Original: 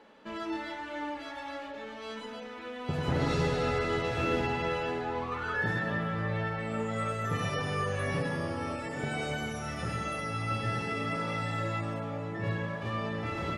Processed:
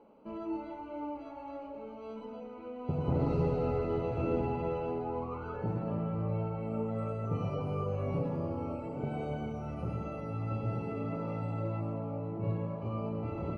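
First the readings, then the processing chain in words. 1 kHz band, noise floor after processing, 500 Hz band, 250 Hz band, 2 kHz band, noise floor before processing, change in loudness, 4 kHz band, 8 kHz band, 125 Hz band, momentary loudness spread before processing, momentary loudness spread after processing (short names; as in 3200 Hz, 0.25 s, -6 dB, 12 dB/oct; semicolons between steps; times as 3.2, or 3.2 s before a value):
-6.0 dB, -45 dBFS, -1.0 dB, -0.5 dB, -18.5 dB, -42 dBFS, -2.5 dB, under -15 dB, under -20 dB, 0.0 dB, 10 LU, 12 LU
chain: running mean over 25 samples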